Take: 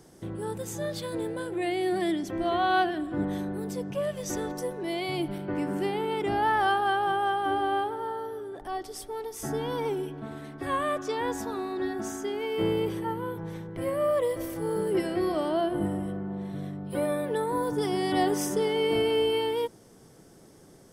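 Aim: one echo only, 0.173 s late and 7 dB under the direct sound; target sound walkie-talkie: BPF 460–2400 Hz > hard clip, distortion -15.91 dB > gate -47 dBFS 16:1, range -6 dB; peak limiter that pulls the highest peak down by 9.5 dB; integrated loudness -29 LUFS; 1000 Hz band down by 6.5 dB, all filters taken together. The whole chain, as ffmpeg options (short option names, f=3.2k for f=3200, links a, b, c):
-af "equalizer=f=1k:t=o:g=-8.5,alimiter=level_in=0.5dB:limit=-24dB:level=0:latency=1,volume=-0.5dB,highpass=460,lowpass=2.4k,aecho=1:1:173:0.447,asoftclip=type=hard:threshold=-30.5dB,agate=range=-6dB:threshold=-47dB:ratio=16,volume=8.5dB"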